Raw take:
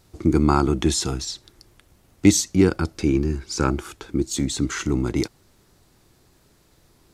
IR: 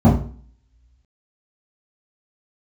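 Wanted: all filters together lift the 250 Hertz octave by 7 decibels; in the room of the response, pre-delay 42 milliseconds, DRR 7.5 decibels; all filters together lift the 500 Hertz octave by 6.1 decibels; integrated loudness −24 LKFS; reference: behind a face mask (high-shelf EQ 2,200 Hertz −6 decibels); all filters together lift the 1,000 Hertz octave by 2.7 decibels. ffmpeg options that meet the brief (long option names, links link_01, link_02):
-filter_complex "[0:a]equalizer=frequency=250:width_type=o:gain=7.5,equalizer=frequency=500:width_type=o:gain=4.5,equalizer=frequency=1000:width_type=o:gain=3.5,asplit=2[link_01][link_02];[1:a]atrim=start_sample=2205,adelay=42[link_03];[link_02][link_03]afir=irnorm=-1:irlink=0,volume=-29.5dB[link_04];[link_01][link_04]amix=inputs=2:normalize=0,highshelf=frequency=2200:gain=-6,volume=-16dB"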